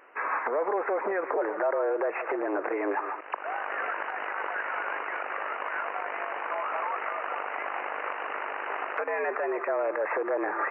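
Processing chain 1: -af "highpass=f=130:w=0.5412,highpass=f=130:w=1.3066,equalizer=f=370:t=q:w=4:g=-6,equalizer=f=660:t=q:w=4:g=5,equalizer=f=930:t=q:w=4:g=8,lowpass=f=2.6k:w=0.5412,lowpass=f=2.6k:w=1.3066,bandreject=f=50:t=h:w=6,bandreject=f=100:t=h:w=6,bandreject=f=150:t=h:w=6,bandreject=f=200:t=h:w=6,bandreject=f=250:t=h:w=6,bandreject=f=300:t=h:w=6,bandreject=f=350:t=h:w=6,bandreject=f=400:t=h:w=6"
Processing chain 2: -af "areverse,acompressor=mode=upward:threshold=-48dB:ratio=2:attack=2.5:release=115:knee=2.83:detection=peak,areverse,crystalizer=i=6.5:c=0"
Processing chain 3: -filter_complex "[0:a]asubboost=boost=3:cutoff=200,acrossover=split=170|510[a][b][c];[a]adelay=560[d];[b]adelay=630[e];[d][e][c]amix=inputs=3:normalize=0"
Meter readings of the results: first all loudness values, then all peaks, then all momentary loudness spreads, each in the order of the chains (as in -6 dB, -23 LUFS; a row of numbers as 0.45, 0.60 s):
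-28.0, -27.0, -32.5 LUFS; -12.0, -14.0, -17.0 dBFS; 5, 3, 4 LU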